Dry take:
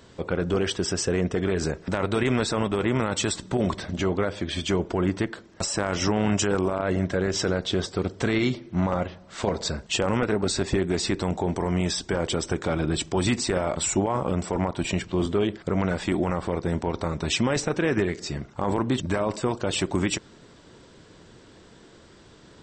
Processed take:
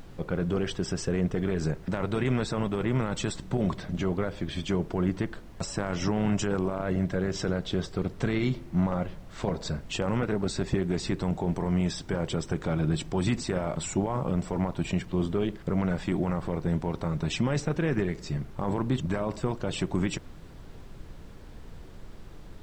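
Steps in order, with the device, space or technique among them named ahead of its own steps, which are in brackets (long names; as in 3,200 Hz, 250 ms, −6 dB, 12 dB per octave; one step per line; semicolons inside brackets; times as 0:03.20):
car interior (parametric band 150 Hz +9 dB 0.73 octaves; high-shelf EQ 4,000 Hz −5.5 dB; brown noise bed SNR 14 dB)
level −5.5 dB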